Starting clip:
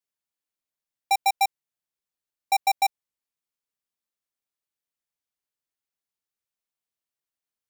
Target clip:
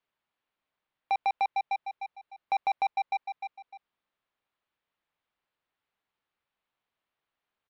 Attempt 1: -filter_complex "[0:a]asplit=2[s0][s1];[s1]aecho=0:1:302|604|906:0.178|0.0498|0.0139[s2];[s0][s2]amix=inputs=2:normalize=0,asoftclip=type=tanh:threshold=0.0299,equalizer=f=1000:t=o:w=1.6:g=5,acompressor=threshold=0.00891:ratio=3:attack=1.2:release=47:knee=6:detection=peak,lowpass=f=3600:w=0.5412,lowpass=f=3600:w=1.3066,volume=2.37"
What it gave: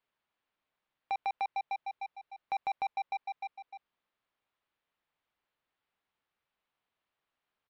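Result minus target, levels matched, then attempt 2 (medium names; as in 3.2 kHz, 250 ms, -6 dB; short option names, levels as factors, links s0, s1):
compression: peak gain reduction +6 dB
-filter_complex "[0:a]asplit=2[s0][s1];[s1]aecho=0:1:302|604|906:0.178|0.0498|0.0139[s2];[s0][s2]amix=inputs=2:normalize=0,asoftclip=type=tanh:threshold=0.0299,equalizer=f=1000:t=o:w=1.6:g=5,acompressor=threshold=0.0251:ratio=3:attack=1.2:release=47:knee=6:detection=peak,lowpass=f=3600:w=0.5412,lowpass=f=3600:w=1.3066,volume=2.37"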